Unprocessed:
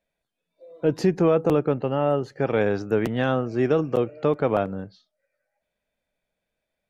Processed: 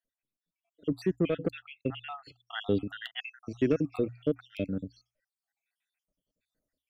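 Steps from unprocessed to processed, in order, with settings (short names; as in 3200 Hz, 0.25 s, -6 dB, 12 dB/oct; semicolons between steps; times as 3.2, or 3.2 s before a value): random spectral dropouts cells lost 68%; notches 60/120 Hz; small resonant body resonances 280/2600 Hz, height 8 dB, ringing for 90 ms; soft clip -12 dBFS, distortion -18 dB; bell 880 Hz -14.5 dB 1.1 oct; vocal rider within 5 dB 2 s; 1.16–3.4 resonant high shelf 4400 Hz -9 dB, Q 3; gain -2 dB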